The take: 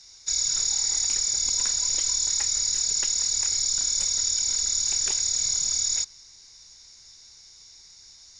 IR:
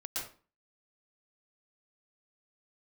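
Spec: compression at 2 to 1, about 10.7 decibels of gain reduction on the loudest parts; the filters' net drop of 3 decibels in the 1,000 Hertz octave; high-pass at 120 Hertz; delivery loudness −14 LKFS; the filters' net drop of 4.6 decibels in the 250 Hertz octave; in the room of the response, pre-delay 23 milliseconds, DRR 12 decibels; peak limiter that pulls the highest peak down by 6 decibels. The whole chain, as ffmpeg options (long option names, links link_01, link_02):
-filter_complex "[0:a]highpass=120,equalizer=frequency=250:width_type=o:gain=-6,equalizer=frequency=1000:width_type=o:gain=-3.5,acompressor=threshold=-42dB:ratio=2,alimiter=level_in=5dB:limit=-24dB:level=0:latency=1,volume=-5dB,asplit=2[link_01][link_02];[1:a]atrim=start_sample=2205,adelay=23[link_03];[link_02][link_03]afir=irnorm=-1:irlink=0,volume=-13.5dB[link_04];[link_01][link_04]amix=inputs=2:normalize=0,volume=21dB"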